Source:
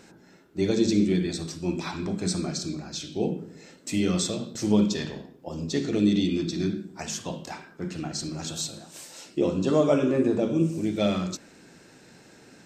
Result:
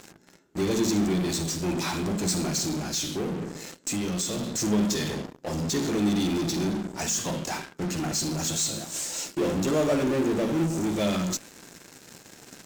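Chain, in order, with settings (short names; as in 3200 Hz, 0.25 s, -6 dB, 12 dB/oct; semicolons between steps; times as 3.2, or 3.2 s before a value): bell 6900 Hz +8.5 dB 0.64 oct; in parallel at -10.5 dB: fuzz box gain 43 dB, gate -47 dBFS; 3.07–4.58 on the sum: compressor, threshold -20 dBFS, peak gain reduction 4.5 dB; gain -6.5 dB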